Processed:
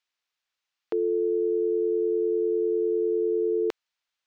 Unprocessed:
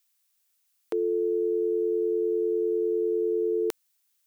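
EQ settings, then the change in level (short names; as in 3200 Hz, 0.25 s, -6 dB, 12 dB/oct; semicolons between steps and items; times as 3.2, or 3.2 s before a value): air absorption 190 m; +1.5 dB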